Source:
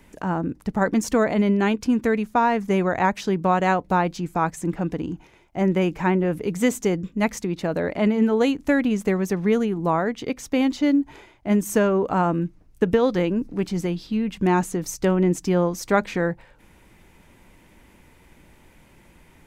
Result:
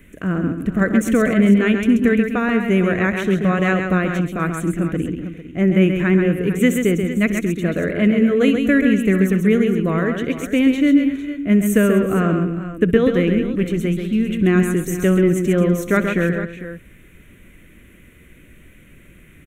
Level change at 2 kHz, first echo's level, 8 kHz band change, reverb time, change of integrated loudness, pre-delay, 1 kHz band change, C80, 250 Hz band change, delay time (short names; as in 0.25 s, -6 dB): +6.5 dB, -18.5 dB, +1.0 dB, none, +5.0 dB, none, -4.5 dB, none, +6.5 dB, 64 ms